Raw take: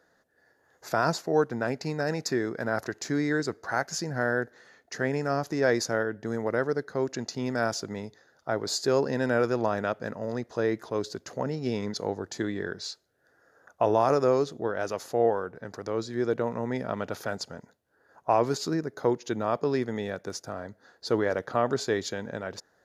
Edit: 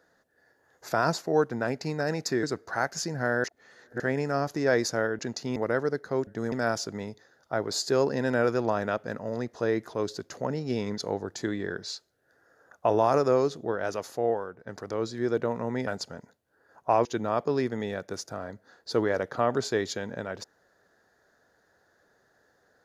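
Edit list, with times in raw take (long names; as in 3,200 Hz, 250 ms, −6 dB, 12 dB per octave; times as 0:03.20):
0:02.43–0:03.39: remove
0:04.40–0:04.96: reverse
0:06.15–0:06.40: swap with 0:07.11–0:07.48
0:14.85–0:15.63: fade out, to −8 dB
0:16.83–0:17.27: remove
0:18.45–0:19.21: remove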